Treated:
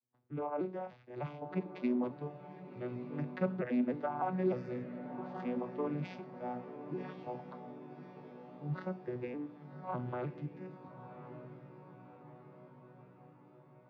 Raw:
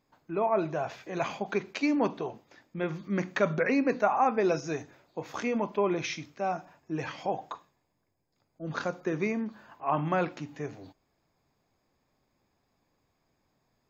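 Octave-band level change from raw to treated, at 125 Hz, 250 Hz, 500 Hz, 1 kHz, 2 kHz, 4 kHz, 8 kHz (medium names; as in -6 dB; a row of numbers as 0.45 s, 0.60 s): -3.5 dB, -5.5 dB, -9.0 dB, -11.0 dB, -15.0 dB, -18.5 dB, no reading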